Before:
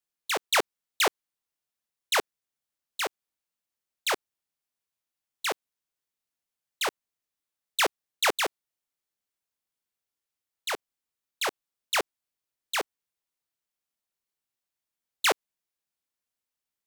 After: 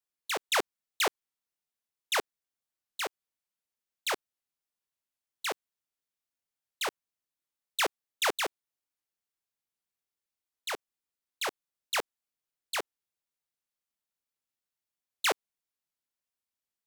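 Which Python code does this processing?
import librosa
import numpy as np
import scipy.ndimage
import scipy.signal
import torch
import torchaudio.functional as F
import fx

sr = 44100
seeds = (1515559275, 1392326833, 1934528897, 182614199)

y = fx.record_warp(x, sr, rpm=78.0, depth_cents=160.0)
y = y * 10.0 ** (-4.0 / 20.0)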